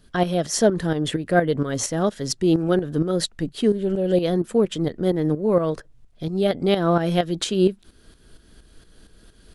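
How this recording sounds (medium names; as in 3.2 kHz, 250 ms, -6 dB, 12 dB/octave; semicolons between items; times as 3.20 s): tremolo saw up 4.3 Hz, depth 65%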